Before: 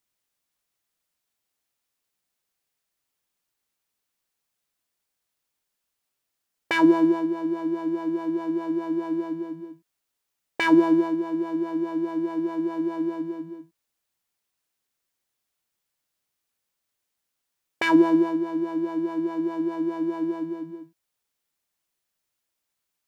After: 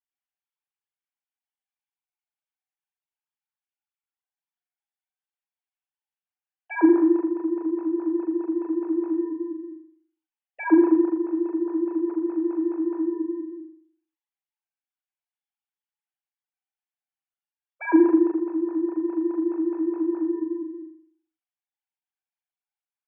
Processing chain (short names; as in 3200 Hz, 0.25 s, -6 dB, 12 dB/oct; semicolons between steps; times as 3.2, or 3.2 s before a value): sine-wave speech; flutter echo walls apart 7 m, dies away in 0.57 s